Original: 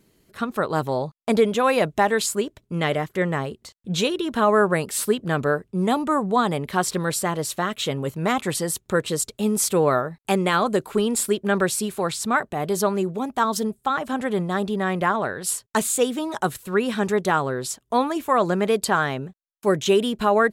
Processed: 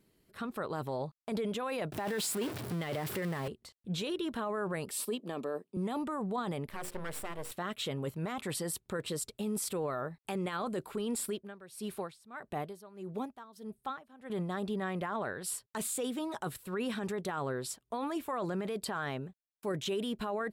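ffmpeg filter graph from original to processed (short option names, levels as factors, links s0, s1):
-filter_complex "[0:a]asettb=1/sr,asplit=3[s0][s1][s2];[s0]atrim=end=1.924[s3];[s1]atrim=start=1.92:end=3.48,asetpts=PTS-STARTPTS,afade=t=in:d=0.004:c=qsin,afade=t=out:st=1.556:d=0.004:c=qsin,aeval=exprs='val(0)+0.5*0.0596*sgn(val(0))':c=same,highpass=f=81:w=0.5412,highpass=f=81:w=1.3066[s4];[s2]atrim=start=3.476[s5];[s3][s4]acrossfade=d=0.004:c1=hsin:c2=qsin[s6];[s6][s5]acrossfade=d=0.004:c1=qsin:c2=hsin,asettb=1/sr,asplit=3[s7][s8][s9];[s7]atrim=end=4.914[s10];[s8]atrim=start=4.91:end=5.77,asetpts=PTS-STARTPTS,afade=t=in:d=0.004:c=qsin,afade=t=out:st=0.856:d=0.004:c=qsin,highpass=f=210:w=0.5412,highpass=f=210:w=1.3066,equalizer=f=1500:t=o:w=0.28:g=-13.5,bandreject=f=2000:w=7.7[s11];[s9]atrim=start=5.766[s12];[s10][s11]acrossfade=d=0.004:c1=hsin:c2=qsin[s13];[s13][s12]acrossfade=d=0.004:c1=qsin:c2=hsin,asettb=1/sr,asplit=3[s14][s15][s16];[s14]atrim=end=6.674[s17];[s15]atrim=start=6.67:end=7.52,asetpts=PTS-STARTPTS,afade=t=in:d=0.004:c=qsin,afade=t=out:st=0.846:d=0.004:c=qsin,equalizer=f=4300:t=o:w=0.78:g=-10.5,aeval=exprs='max(val(0),0)':c=same,bandreject=f=60:t=h:w=6,bandreject=f=120:t=h:w=6,bandreject=f=180:t=h:w=6,bandreject=f=240:t=h:w=6,bandreject=f=300:t=h:w=6,bandreject=f=360:t=h:w=6,bandreject=f=420:t=h:w=6,bandreject=f=480:t=h:w=6,bandreject=f=540:t=h:w=6[s18];[s16]atrim=start=7.516[s19];[s17][s18]acrossfade=d=0.004:c1=hsin:c2=qsin[s20];[s20][s19]acrossfade=d=0.004:c1=qsin:c2=hsin,asettb=1/sr,asplit=3[s21][s22][s23];[s21]atrim=end=11.304[s24];[s22]atrim=start=11.3:end=14.3,asetpts=PTS-STARTPTS,afade=t=in:d=0.004:c=qsin,afade=t=out:st=2.996:d=0.004:c=qsin,bandreject=f=7600:w=10,aeval=exprs='val(0)*pow(10,-23*(0.5-0.5*cos(2*PI*1.6*n/s))/20)':c=same[s25];[s23]atrim=start=14.296[s26];[s24][s25]acrossfade=d=0.004:c1=hsin:c2=qsin[s27];[s27][s26]acrossfade=d=0.004:c1=qsin:c2=hsin,equalizer=f=6500:t=o:w=0.3:g=-6,alimiter=limit=0.126:level=0:latency=1:release=10,volume=0.355"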